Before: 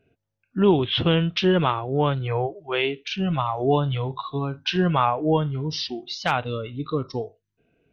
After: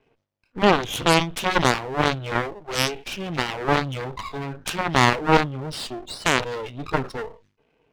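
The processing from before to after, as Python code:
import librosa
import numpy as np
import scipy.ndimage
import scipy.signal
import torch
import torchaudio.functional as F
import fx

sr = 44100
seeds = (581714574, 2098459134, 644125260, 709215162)

y = fx.cabinet(x, sr, low_hz=110.0, low_slope=12, high_hz=5500.0, hz=(200.0, 480.0, 960.0, 2400.0), db=(-6, 7, 4, 3))
y = np.maximum(y, 0.0)
y = fx.cheby_harmonics(y, sr, harmonics=(7,), levels_db=(-10,), full_scale_db=-5.0)
y = fx.sustainer(y, sr, db_per_s=150.0)
y = y * 10.0 ** (2.0 / 20.0)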